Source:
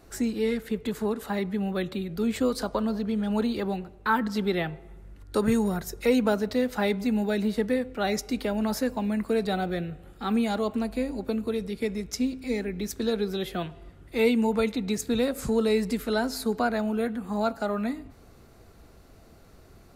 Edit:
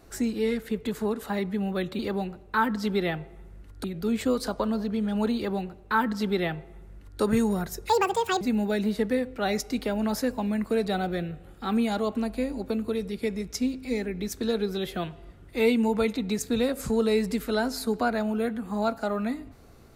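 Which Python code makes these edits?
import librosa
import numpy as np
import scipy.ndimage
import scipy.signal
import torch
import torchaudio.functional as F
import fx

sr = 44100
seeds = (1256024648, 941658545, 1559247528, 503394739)

y = fx.edit(x, sr, fx.duplicate(start_s=3.51, length_s=1.85, to_s=1.99),
    fx.speed_span(start_s=6.04, length_s=0.96, speed=1.84), tone=tone)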